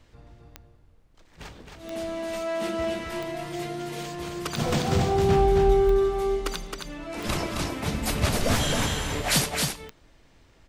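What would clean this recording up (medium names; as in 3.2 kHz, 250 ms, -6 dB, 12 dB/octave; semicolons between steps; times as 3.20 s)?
de-click; expander -47 dBFS, range -21 dB; inverse comb 267 ms -4 dB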